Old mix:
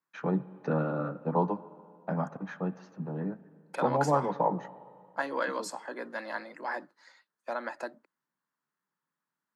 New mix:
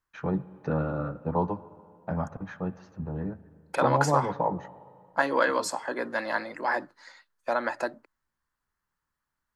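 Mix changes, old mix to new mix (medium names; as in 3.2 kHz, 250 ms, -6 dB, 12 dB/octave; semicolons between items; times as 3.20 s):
second voice +7.5 dB; master: remove steep high-pass 150 Hz 36 dB/octave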